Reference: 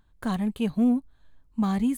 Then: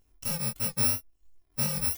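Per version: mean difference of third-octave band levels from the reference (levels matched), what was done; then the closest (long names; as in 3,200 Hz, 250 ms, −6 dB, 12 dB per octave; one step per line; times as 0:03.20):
16.0 dB: samples in bit-reversed order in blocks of 128 samples
reverb reduction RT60 0.66 s
chorus effect 2.9 Hz, delay 18.5 ms, depth 5.7 ms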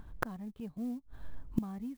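6.0 dB: low-pass filter 1,200 Hz 6 dB per octave
gate with flip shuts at −29 dBFS, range −30 dB
converter with an unsteady clock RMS 0.021 ms
level +14 dB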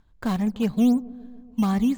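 3.0 dB: elliptic low-pass filter 7,300 Hz
in parallel at −5 dB: sample-and-hold swept by an LFO 10×, swing 100% 3.9 Hz
on the sum: delay with a low-pass on its return 143 ms, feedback 67%, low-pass 830 Hz, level −20 dB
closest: third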